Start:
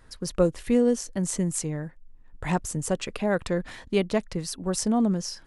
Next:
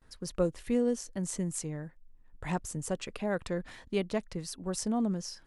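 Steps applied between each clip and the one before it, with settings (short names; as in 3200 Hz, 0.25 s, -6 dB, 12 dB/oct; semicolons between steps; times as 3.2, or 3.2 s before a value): gate with hold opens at -46 dBFS; gain -7 dB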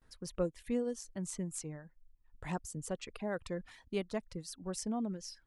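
reverb removal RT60 0.82 s; gain -5 dB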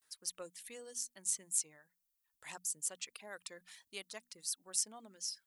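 differentiator; notches 60/120/180/240 Hz; gain +8.5 dB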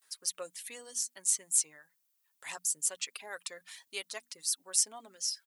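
HPF 470 Hz 6 dB/oct; comb 7.3 ms, depth 40%; gain +6.5 dB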